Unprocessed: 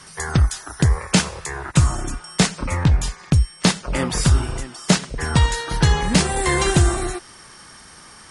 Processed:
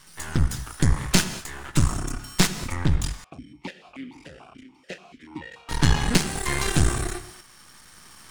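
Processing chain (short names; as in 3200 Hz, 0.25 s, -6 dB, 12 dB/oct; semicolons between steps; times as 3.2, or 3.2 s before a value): bell 530 Hz -7.5 dB 1 oct; half-wave rectifier; tremolo saw up 0.81 Hz, depth 50%; non-linear reverb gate 0.24 s flat, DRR 10.5 dB; 3.24–5.69 vowel sequencer 6.9 Hz; gain +2 dB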